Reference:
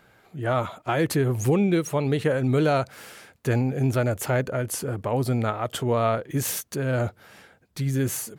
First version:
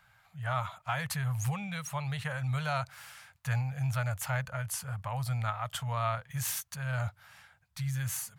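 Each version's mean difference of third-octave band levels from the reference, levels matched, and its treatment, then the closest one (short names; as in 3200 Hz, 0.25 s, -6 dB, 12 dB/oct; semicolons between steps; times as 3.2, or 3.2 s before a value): 6.5 dB: Chebyshev band-stop 120–930 Hz, order 2; gain -4.5 dB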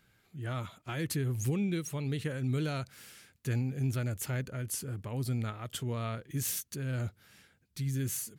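3.5 dB: bell 690 Hz -14.5 dB 2.3 oct; gain -5 dB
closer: second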